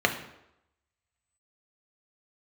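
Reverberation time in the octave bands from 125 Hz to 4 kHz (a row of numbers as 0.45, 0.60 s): 0.70, 0.75, 0.85, 0.85, 0.75, 0.65 s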